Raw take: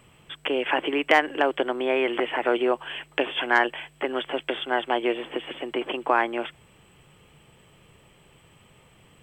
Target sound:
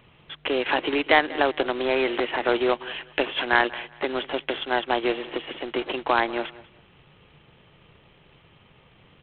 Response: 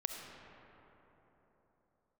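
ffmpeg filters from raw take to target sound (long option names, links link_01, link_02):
-af "aresample=8000,acrusher=bits=2:mode=log:mix=0:aa=0.000001,aresample=44100,aecho=1:1:191|382:0.106|0.0254"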